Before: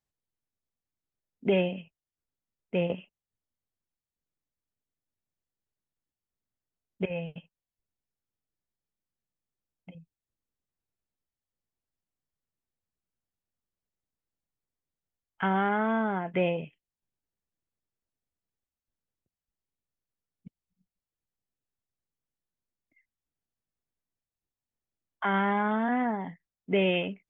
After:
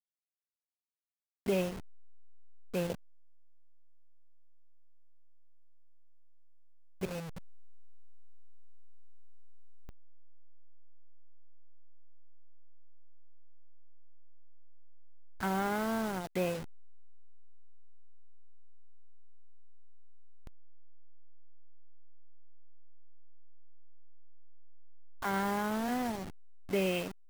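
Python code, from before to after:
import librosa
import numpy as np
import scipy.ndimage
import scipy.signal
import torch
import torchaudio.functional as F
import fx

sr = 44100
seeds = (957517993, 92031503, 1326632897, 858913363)

y = fx.delta_hold(x, sr, step_db=-30.5)
y = y * 10.0 ** (-5.5 / 20.0)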